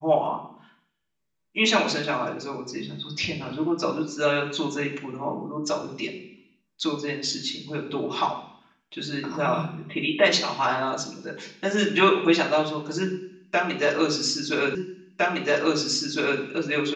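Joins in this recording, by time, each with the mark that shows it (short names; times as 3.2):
14.75 repeat of the last 1.66 s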